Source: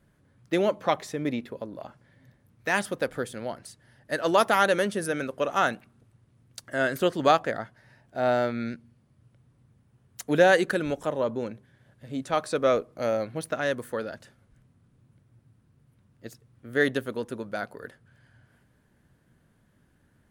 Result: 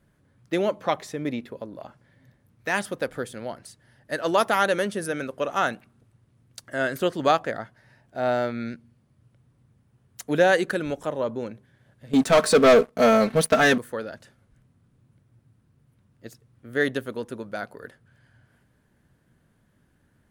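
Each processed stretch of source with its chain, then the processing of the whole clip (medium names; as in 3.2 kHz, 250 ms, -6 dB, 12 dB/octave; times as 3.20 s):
12.13–13.78 s: comb 4.5 ms, depth 89% + waveshaping leveller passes 3
whole clip: none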